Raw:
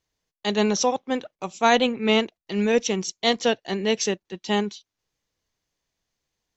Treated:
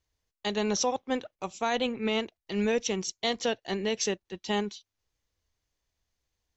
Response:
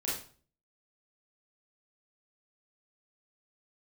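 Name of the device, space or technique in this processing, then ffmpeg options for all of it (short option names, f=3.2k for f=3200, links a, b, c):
car stereo with a boomy subwoofer: -af "lowshelf=f=110:t=q:w=1.5:g=7.5,alimiter=limit=-13.5dB:level=0:latency=1:release=125,volume=-3.5dB"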